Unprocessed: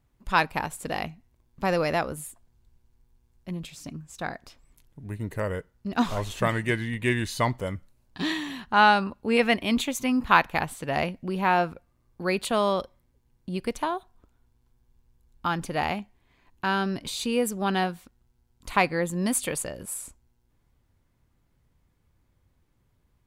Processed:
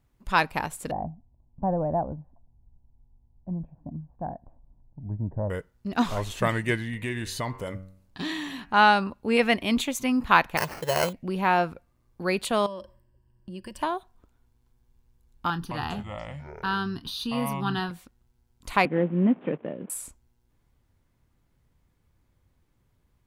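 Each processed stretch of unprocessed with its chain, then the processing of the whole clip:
0:00.91–0:05.50: inverse Chebyshev low-pass filter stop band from 4,600 Hz, stop band 80 dB + comb filter 1.2 ms, depth 62%
0:06.77–0:08.74: hum removal 94.5 Hz, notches 30 + downward compressor 2.5 to 1, threshold −28 dBFS
0:10.57–0:11.13: high-pass filter 130 Hz + comb filter 1.9 ms, depth 95% + sample-rate reduction 3,600 Hz
0:12.66–0:13.82: EQ curve with evenly spaced ripples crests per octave 1.3, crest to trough 14 dB + downward compressor 3 to 1, threshold −39 dBFS + one half of a high-frequency compander decoder only
0:15.50–0:17.91: phaser with its sweep stopped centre 2,200 Hz, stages 6 + delay with pitch and tempo change per echo 208 ms, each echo −6 semitones, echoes 2, each echo −6 dB + double-tracking delay 29 ms −14 dB
0:18.85–0:19.90: variable-slope delta modulation 16 kbit/s + high-pass filter 180 Hz 24 dB per octave + tilt shelving filter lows +9.5 dB, about 680 Hz
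whole clip: no processing

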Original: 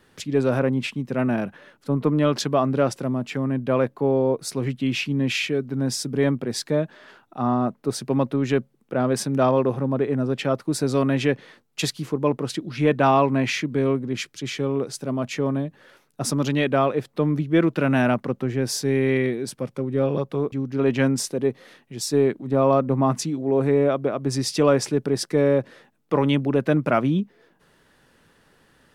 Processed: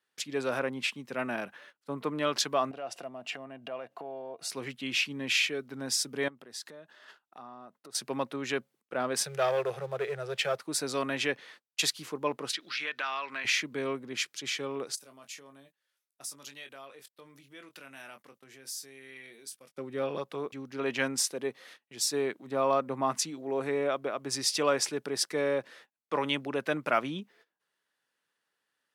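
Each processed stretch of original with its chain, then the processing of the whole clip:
0:02.71–0:04.50: high-shelf EQ 8,800 Hz −8 dB + downward compressor, threshold −31 dBFS + hollow resonant body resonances 690/2,800 Hz, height 15 dB, ringing for 35 ms
0:06.28–0:07.95: notch filter 2,300 Hz, Q 9.1 + downward compressor 4 to 1, threshold −38 dBFS
0:09.24–0:10.59: Chebyshev band-stop filter 170–420 Hz + parametric band 1,000 Hz −11 dB 0.43 octaves + leveller curve on the samples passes 1
0:12.53–0:13.45: high-pass filter 560 Hz 6 dB per octave + flat-topped bell 2,600 Hz +11 dB 2.5 octaves + downward compressor 3 to 1, threshold −31 dBFS
0:14.95–0:19.77: first-order pre-emphasis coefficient 0.8 + double-tracking delay 22 ms −8 dB + downward compressor 2.5 to 1, threshold −40 dBFS
whole clip: noise gate −47 dBFS, range −19 dB; high-pass filter 1,400 Hz 6 dB per octave

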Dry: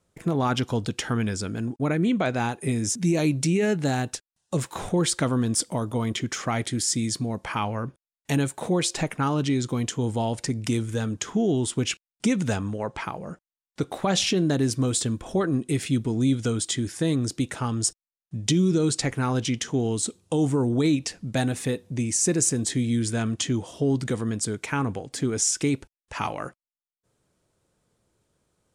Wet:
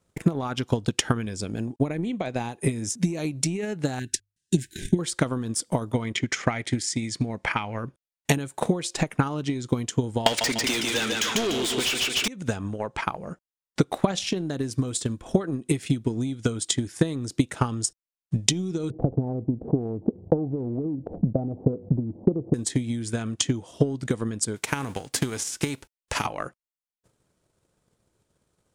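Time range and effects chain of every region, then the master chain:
0:01.26–0:02.59: high-pass filter 51 Hz + parametric band 1,400 Hz −8.5 dB 0.35 octaves
0:03.99–0:04.99: linear-phase brick-wall band-stop 410–1,500 Hz + mains-hum notches 50/100 Hz
0:05.92–0:07.77: low-pass filter 8,300 Hz + parametric band 2,100 Hz +7.5 dB 0.62 octaves + notch filter 1,100 Hz, Q 16
0:10.26–0:12.28: meter weighting curve D + repeating echo 147 ms, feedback 51%, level −7 dB + mid-hump overdrive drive 35 dB, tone 5,900 Hz, clips at −1.5 dBFS
0:18.90–0:22.54: Butterworth low-pass 760 Hz 48 dB per octave + envelope flattener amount 50%
0:24.55–0:26.24: spectral envelope flattened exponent 0.6 + downward compressor 5 to 1, threshold −26 dBFS
whole clip: downward compressor 6 to 1, threshold −26 dBFS; transient designer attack +12 dB, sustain −4 dB; level −1 dB

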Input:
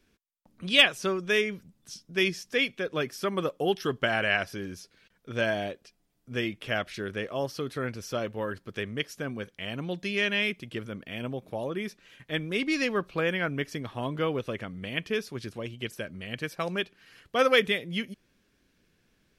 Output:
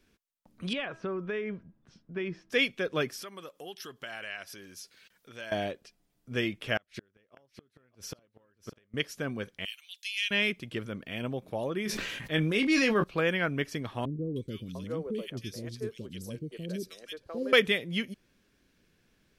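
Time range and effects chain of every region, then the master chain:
0:00.73–0:02.50: low-pass filter 1,600 Hz + hum removal 324.9 Hz, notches 5 + downward compressor 12 to 1, threshold −29 dBFS
0:03.22–0:05.52: downward compressor 2 to 1, threshold −50 dBFS + spectral tilt +2.5 dB per octave
0:06.77–0:08.94: gate with flip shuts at −27 dBFS, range −36 dB + single-tap delay 600 ms −15 dB
0:09.65–0:10.31: Chebyshev high-pass filter 2,700 Hz, order 3 + high-shelf EQ 8,600 Hz +10 dB
0:11.84–0:13.04: double-tracking delay 19 ms −9 dB + level that may fall only so fast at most 25 dB per second
0:14.05–0:17.53: flat-topped bell 1,400 Hz −12.5 dB 2.5 octaves + three-band delay without the direct sound lows, highs, mids 310/700 ms, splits 430/1,800 Hz
whole clip: no processing

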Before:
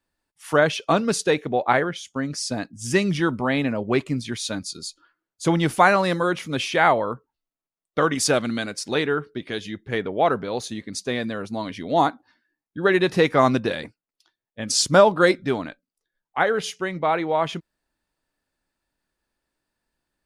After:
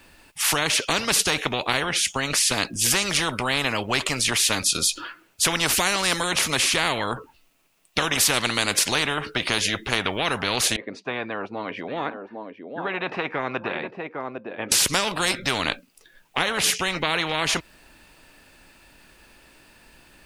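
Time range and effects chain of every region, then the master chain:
0:10.76–0:14.72: four-pole ladder band-pass 530 Hz, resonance 30% + single-tap delay 805 ms −16.5 dB
whole clip: parametric band 2,600 Hz +9 dB 0.46 octaves; downward compressor 2 to 1, threshold −29 dBFS; every bin compressed towards the loudest bin 4 to 1; level +8 dB

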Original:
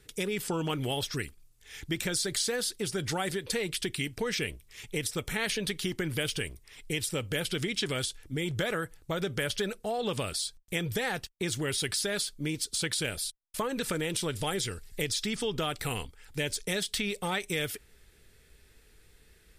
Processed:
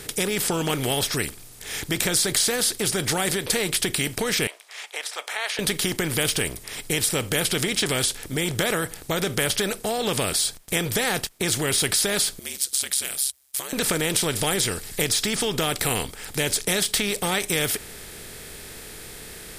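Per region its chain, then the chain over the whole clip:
0:04.47–0:05.59: Butterworth high-pass 680 Hz + head-to-tape spacing loss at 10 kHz 22 dB
0:12.39–0:13.73: first-order pre-emphasis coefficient 0.97 + ring modulation 68 Hz
whole clip: compressor on every frequency bin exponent 0.6; high-shelf EQ 8,900 Hz +10.5 dB; level +3 dB

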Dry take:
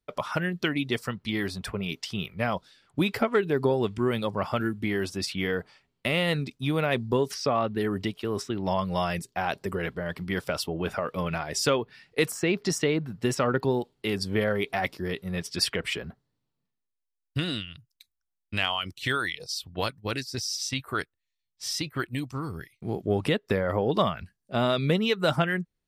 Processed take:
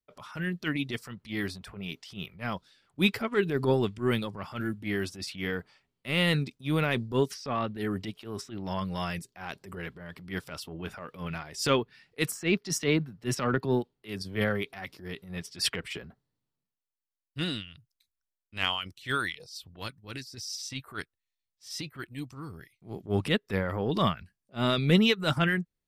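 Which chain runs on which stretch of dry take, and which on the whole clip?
0:12.58–0:14.94: parametric band 7,600 Hz −4 dB 0.24 octaves + multiband upward and downward expander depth 40%
whole clip: dynamic equaliser 650 Hz, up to −7 dB, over −39 dBFS, Q 1.1; transient designer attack −8 dB, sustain +5 dB; expander for the loud parts 2.5 to 1, over −35 dBFS; level +7 dB

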